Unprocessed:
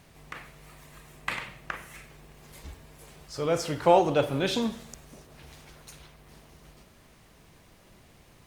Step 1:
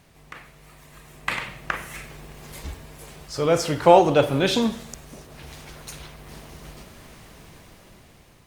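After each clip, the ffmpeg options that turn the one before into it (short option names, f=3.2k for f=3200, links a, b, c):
-af "dynaudnorm=f=420:g=7:m=11.5dB"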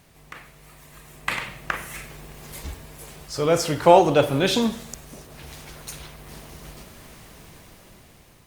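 -af "highshelf=f=8.6k:g=6"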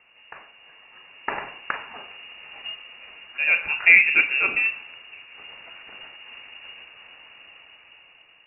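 -af "lowpass=f=2.5k:t=q:w=0.5098,lowpass=f=2.5k:t=q:w=0.6013,lowpass=f=2.5k:t=q:w=0.9,lowpass=f=2.5k:t=q:w=2.563,afreqshift=-2900,volume=-1dB"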